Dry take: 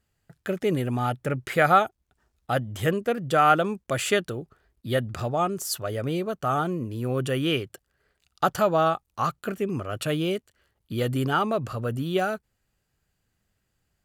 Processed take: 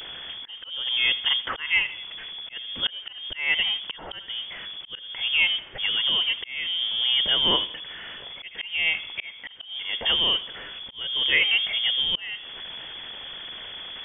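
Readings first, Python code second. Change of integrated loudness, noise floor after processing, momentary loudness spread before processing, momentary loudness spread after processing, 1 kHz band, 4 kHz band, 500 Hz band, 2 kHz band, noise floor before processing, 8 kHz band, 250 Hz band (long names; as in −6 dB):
+2.5 dB, −44 dBFS, 10 LU, 16 LU, −14.5 dB, +16.5 dB, −16.0 dB, +6.0 dB, −77 dBFS, below −40 dB, −16.5 dB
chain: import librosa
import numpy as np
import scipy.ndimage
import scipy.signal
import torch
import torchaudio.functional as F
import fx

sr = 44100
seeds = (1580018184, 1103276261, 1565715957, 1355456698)

p1 = x + 0.5 * 10.0 ** (-34.0 / 20.0) * np.sign(x)
p2 = fx.quant_float(p1, sr, bits=2)
p3 = p1 + F.gain(torch.from_numpy(p2), -11.0).numpy()
p4 = fx.echo_feedback(p3, sr, ms=81, feedback_pct=44, wet_db=-19)
p5 = fx.auto_swell(p4, sr, attack_ms=424.0)
y = fx.freq_invert(p5, sr, carrier_hz=3400)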